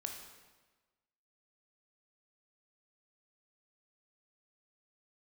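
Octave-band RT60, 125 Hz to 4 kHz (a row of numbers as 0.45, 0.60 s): 1.3, 1.3, 1.3, 1.3, 1.2, 1.1 s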